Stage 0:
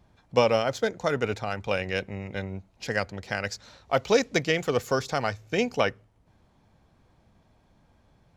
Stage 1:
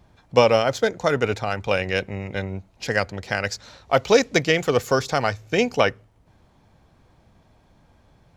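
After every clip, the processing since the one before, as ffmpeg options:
ffmpeg -i in.wav -af "equalizer=frequency=210:width_type=o:width=0.44:gain=-2,volume=5.5dB" out.wav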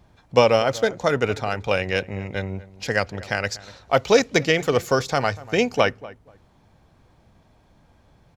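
ffmpeg -i in.wav -filter_complex "[0:a]asplit=2[link_01][link_02];[link_02]adelay=241,lowpass=frequency=1500:poles=1,volume=-18dB,asplit=2[link_03][link_04];[link_04]adelay=241,lowpass=frequency=1500:poles=1,volume=0.2[link_05];[link_01][link_03][link_05]amix=inputs=3:normalize=0" out.wav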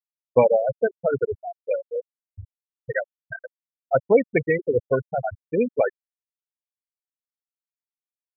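ffmpeg -i in.wav -af "afftfilt=real='re*gte(hypot(re,im),0.398)':imag='im*gte(hypot(re,im),0.398)':win_size=1024:overlap=0.75,asuperstop=centerf=1200:order=4:qfactor=4.4" out.wav

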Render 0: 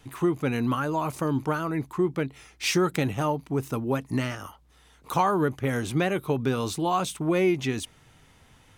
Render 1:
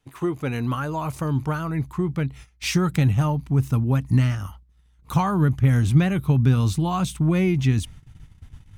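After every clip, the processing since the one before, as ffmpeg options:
ffmpeg -i in.wav -af "asubboost=boost=11.5:cutoff=130,agate=range=-16dB:threshold=-40dB:ratio=16:detection=peak" out.wav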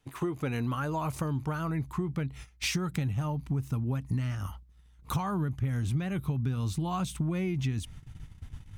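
ffmpeg -i in.wav -af "acompressor=threshold=-28dB:ratio=6" out.wav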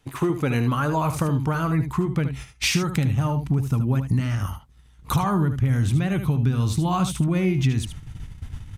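ffmpeg -i in.wav -af "aecho=1:1:75:0.335,volume=8.5dB" -ar 32000 -c:a sbc -b:a 192k out.sbc

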